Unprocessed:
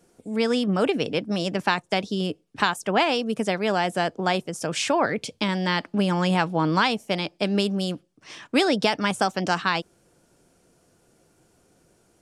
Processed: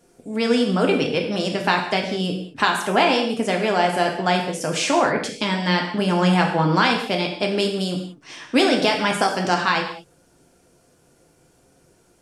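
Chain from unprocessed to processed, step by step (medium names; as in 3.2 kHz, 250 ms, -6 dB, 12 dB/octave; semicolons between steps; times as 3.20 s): gated-style reverb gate 250 ms falling, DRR 1 dB; trim +1.5 dB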